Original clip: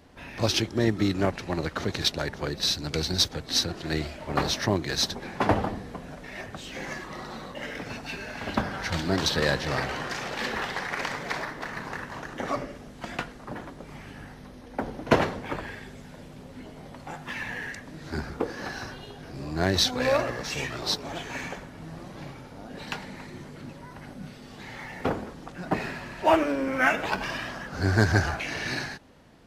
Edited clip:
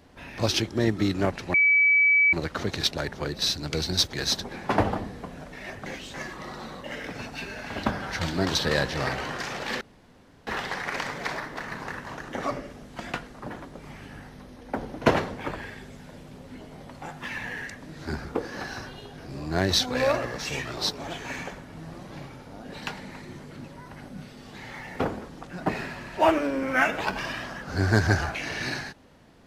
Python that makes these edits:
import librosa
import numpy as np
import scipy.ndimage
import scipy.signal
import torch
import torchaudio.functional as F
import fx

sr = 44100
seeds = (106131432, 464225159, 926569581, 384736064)

y = fx.edit(x, sr, fx.insert_tone(at_s=1.54, length_s=0.79, hz=2290.0, db=-16.0),
    fx.cut(start_s=3.34, length_s=1.5),
    fx.reverse_span(start_s=6.57, length_s=0.28),
    fx.insert_room_tone(at_s=10.52, length_s=0.66), tone=tone)